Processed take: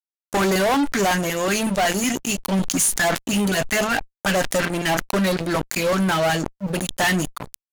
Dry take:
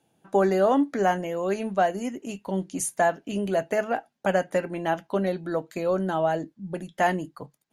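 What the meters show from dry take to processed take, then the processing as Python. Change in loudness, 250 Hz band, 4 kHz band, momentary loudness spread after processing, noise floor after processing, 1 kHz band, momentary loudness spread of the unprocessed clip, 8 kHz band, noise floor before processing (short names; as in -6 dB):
+5.0 dB, +6.0 dB, +17.0 dB, 6 LU, under -85 dBFS, +2.5 dB, 10 LU, +14.0 dB, -73 dBFS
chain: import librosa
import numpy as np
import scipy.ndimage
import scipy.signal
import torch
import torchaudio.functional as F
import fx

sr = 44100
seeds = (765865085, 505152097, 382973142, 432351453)

y = fx.tone_stack(x, sr, knobs='5-5-5')
y = fx.filter_lfo_notch(y, sr, shape='saw_up', hz=5.4, low_hz=360.0, high_hz=4400.0, q=0.91)
y = fx.fuzz(y, sr, gain_db=48.0, gate_db=-56.0)
y = fx.sustainer(y, sr, db_per_s=55.0)
y = F.gain(torch.from_numpy(y), -3.5).numpy()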